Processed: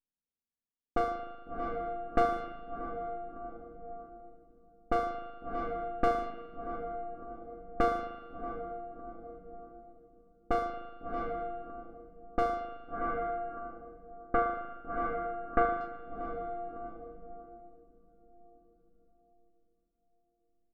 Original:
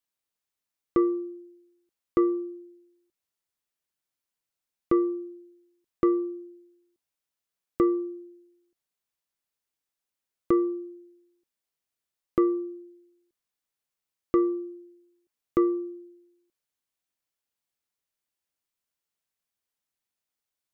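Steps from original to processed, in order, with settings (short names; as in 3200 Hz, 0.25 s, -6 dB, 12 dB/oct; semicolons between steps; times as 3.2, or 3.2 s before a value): minimum comb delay 4.2 ms; doubler 26 ms -13.5 dB; diffused feedback echo 0.685 s, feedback 45%, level -5 dB; tremolo 0.53 Hz, depth 33%; 12.81–15.81 synth low-pass 1700 Hz, resonance Q 1.8; low-pass opened by the level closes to 350 Hz, open at -26 dBFS; spring tank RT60 1.2 s, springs 38 ms, chirp 30 ms, DRR 4.5 dB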